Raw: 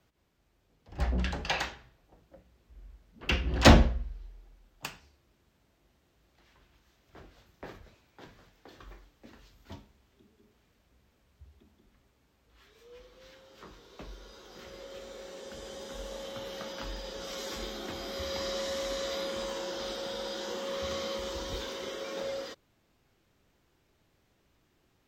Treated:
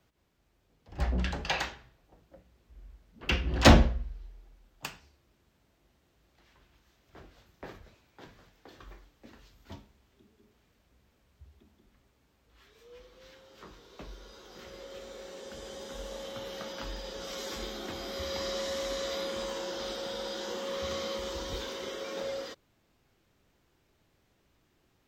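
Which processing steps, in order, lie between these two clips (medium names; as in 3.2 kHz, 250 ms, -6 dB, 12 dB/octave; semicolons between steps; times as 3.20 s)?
hard clipper -7.5 dBFS, distortion -26 dB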